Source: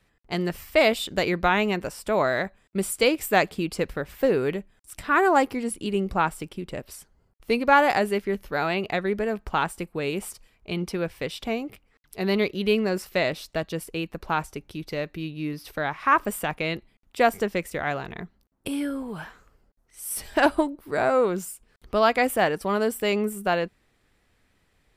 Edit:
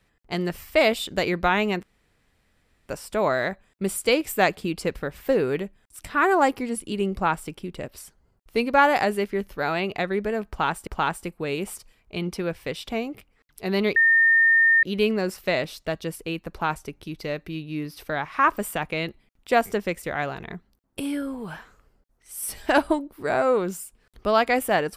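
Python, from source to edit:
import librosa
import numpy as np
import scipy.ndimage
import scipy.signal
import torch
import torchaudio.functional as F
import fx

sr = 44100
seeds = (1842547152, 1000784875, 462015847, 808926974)

y = fx.edit(x, sr, fx.insert_room_tone(at_s=1.83, length_s=1.06),
    fx.repeat(start_s=9.42, length_s=0.39, count=2),
    fx.insert_tone(at_s=12.51, length_s=0.87, hz=1820.0, db=-14.0), tone=tone)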